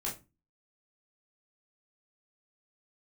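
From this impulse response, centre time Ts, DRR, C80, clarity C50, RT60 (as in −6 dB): 24 ms, −5.0 dB, 17.5 dB, 10.5 dB, 0.25 s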